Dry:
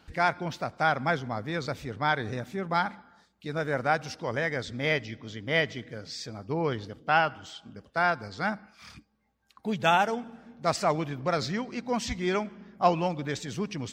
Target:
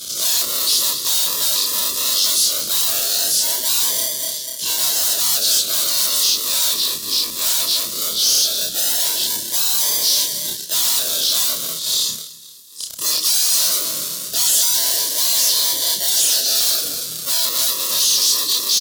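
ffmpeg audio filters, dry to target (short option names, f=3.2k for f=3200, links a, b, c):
-filter_complex "[0:a]afftfilt=real='re':imag='-im':win_size=2048:overlap=0.75,acrossover=split=400|4700[a][b][c];[b]acrusher=samples=34:mix=1:aa=0.000001:lfo=1:lforange=20.4:lforate=0.24[d];[a][d][c]amix=inputs=3:normalize=0,asuperstop=centerf=1100:order=8:qfactor=3,aecho=1:1:183|366|549:0.0891|0.0374|0.0157,asetrate=32667,aresample=44100,crystalizer=i=7.5:c=0,afftfilt=real='re*lt(hypot(re,im),0.0316)':imag='im*lt(hypot(re,im),0.0316)':win_size=1024:overlap=0.75,highshelf=f=2.8k:g=-8,asplit=2[e][f];[f]highpass=f=720:p=1,volume=30dB,asoftclip=type=tanh:threshold=-22.5dB[g];[e][g]amix=inputs=2:normalize=0,lowpass=f=5.1k:p=1,volume=-6dB,aexciter=amount=10.3:drive=4.1:freq=3.4k"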